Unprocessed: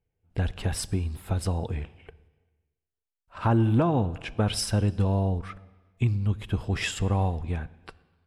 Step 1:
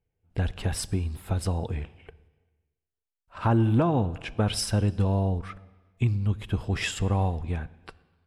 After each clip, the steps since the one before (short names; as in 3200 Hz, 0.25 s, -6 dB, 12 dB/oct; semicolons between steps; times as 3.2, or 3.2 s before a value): nothing audible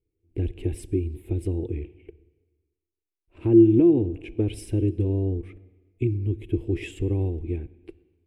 EQ curve 100 Hz 0 dB, 200 Hz -9 dB, 340 Hz +15 dB, 570 Hz -11 dB, 1400 Hz -26 dB, 2300 Hz -4 dB, 4900 Hz -21 dB, 9300 Hz -10 dB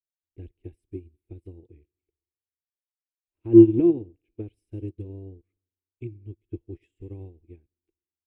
upward expander 2.5:1, over -39 dBFS; gain +4.5 dB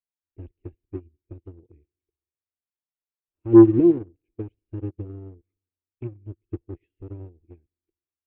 sample leveller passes 1; air absorption 430 m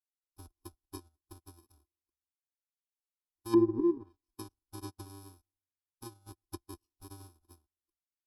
FFT order left unsorted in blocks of 64 samples; fixed phaser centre 540 Hz, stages 6; treble ducked by the level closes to 420 Hz, closed at -14.5 dBFS; gain -7.5 dB